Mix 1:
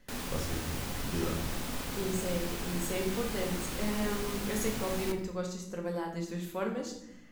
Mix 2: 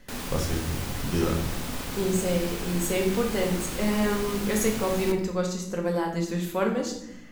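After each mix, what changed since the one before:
speech +8.5 dB; background +3.5 dB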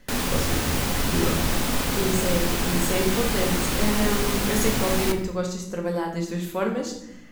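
background +9.0 dB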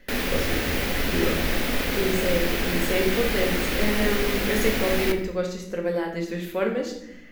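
master: add ten-band EQ 125 Hz -8 dB, 500 Hz +4 dB, 1000 Hz -7 dB, 2000 Hz +6 dB, 8000 Hz -9 dB

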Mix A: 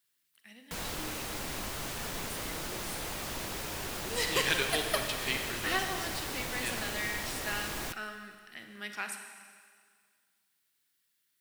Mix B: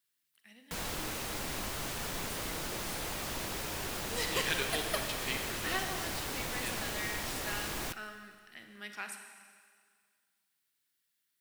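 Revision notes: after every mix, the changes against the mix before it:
speech -4.0 dB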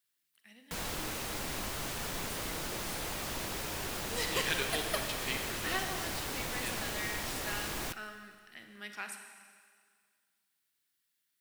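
none

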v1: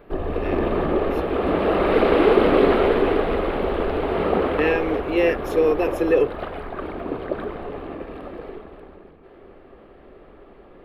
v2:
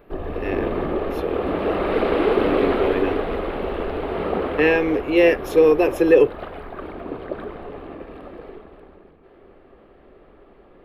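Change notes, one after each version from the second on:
speech +4.5 dB; background -3.0 dB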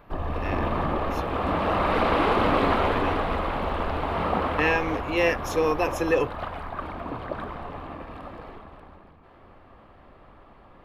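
speech -4.0 dB; master: add fifteen-band EQ 100 Hz +8 dB, 400 Hz -11 dB, 1000 Hz +7 dB, 6300 Hz +11 dB

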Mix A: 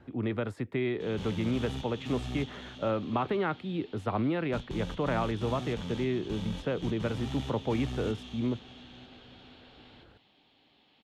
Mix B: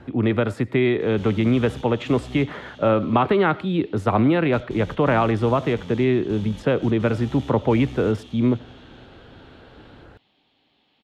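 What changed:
speech +10.5 dB; reverb: on, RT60 0.35 s

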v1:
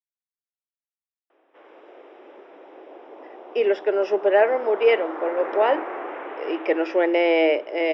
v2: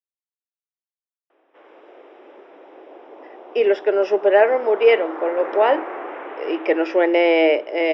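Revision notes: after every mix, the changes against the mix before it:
reverb: on, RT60 0.30 s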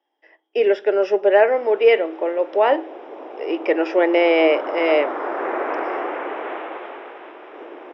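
speech: entry -3.00 s; background +5.5 dB

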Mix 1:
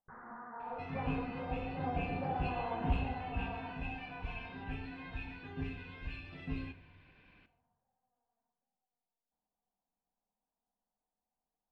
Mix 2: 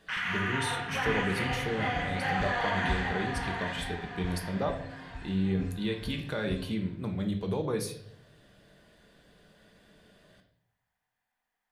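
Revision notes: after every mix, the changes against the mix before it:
speech: unmuted; first sound: remove Gaussian blur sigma 10 samples; second sound: remove synth low-pass 2800 Hz, resonance Q 4.3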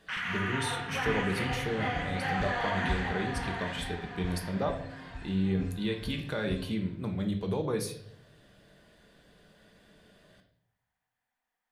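first sound: send -11.0 dB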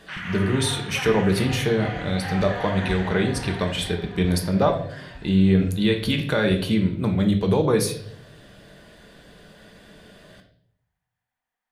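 speech +11.5 dB

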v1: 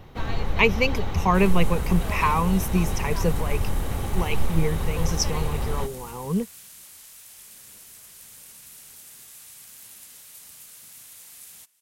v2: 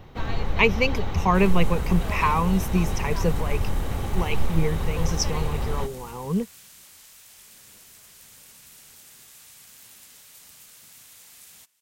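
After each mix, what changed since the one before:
master: add bell 11000 Hz -6.5 dB 0.73 oct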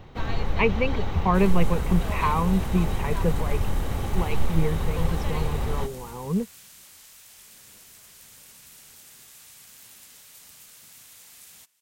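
speech: add air absorption 460 m

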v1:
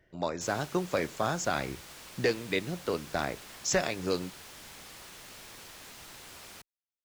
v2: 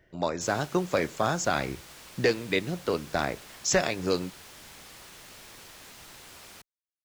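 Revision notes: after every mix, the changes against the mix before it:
speech +3.5 dB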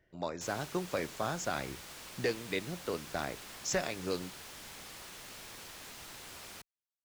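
speech -8.5 dB

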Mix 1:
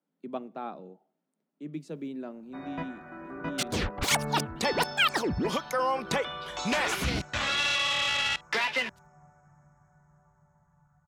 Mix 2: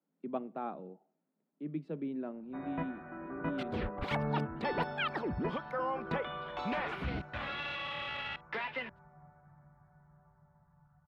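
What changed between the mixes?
second sound -6.0 dB; master: add air absorption 430 m

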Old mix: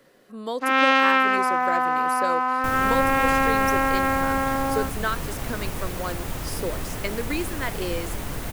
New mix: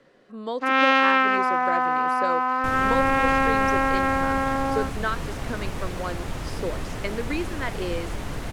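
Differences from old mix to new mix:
speech: add high shelf 8300 Hz -11 dB; master: add air absorption 53 m

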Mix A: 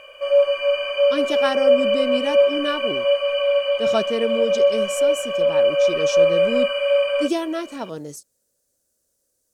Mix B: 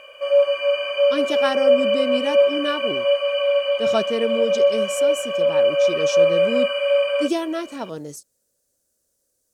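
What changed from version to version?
background: add HPF 120 Hz 6 dB/oct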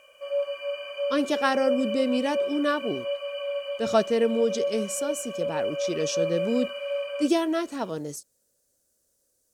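background -11.5 dB

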